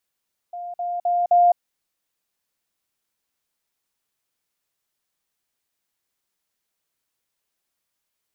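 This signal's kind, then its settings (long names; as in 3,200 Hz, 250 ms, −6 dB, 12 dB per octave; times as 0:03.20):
level staircase 703 Hz −29.5 dBFS, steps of 6 dB, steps 4, 0.21 s 0.05 s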